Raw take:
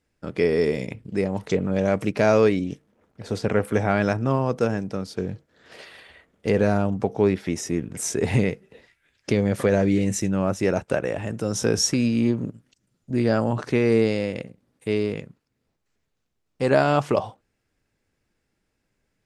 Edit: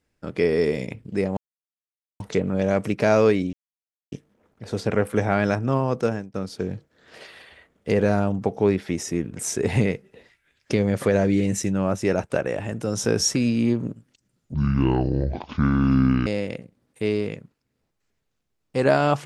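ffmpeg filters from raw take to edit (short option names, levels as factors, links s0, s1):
-filter_complex "[0:a]asplit=6[s0][s1][s2][s3][s4][s5];[s0]atrim=end=1.37,asetpts=PTS-STARTPTS,afade=t=out:st=1.366:d=0.004:c=hsin,apad=pad_dur=0.83[s6];[s1]atrim=start=1.37:end=2.7,asetpts=PTS-STARTPTS,afade=t=in:d=0.004:c=hsin,afade=t=out:st=1.326:d=0.004:c=hsin,apad=pad_dur=0.59[s7];[s2]atrim=start=2.7:end=4.92,asetpts=PTS-STARTPTS,afade=t=in:d=0.004:c=hsin,afade=t=out:st=1.86:d=0.36:c=qsin[s8];[s3]atrim=start=4.92:end=13.124,asetpts=PTS-STARTPTS,afade=t=in:d=0.004:c=hsin[s9];[s4]atrim=start=13.12:end=14.12,asetpts=PTS-STARTPTS,asetrate=25578,aresample=44100,atrim=end_sample=76034,asetpts=PTS-STARTPTS[s10];[s5]atrim=start=14.116[s11];[s6][s7][s8][s9]concat=n=4:v=0:a=1[s12];[s12][s10]acrossfade=d=0.004:c1=hsin:c2=hsin[s13];[s13][s11]acrossfade=d=0.004:c1=hsin:c2=hsin"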